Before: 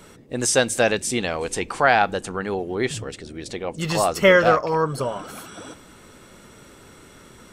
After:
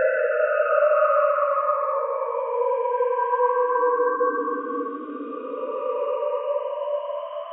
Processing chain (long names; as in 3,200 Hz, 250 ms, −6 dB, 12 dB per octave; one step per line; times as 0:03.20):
three sine waves on the formant tracks
brickwall limiter −14 dBFS, peak gain reduction 10 dB
extreme stretch with random phases 9.8×, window 0.25 s, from 0:04.41
echo through a band-pass that steps 156 ms, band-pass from 290 Hz, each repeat 0.7 octaves, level −12 dB